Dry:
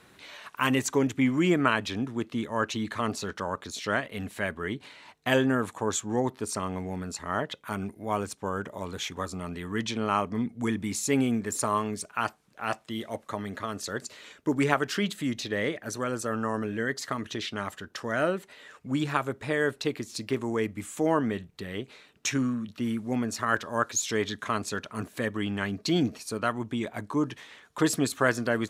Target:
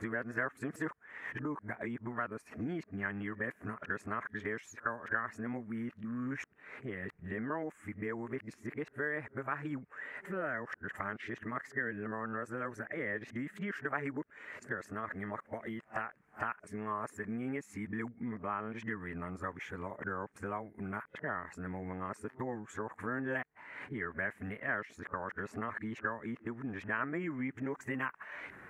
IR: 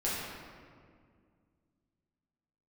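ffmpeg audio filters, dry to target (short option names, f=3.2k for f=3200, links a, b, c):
-af "areverse,acompressor=threshold=-43dB:ratio=3,highshelf=f=2.7k:t=q:w=3:g=-13.5,volume=2dB"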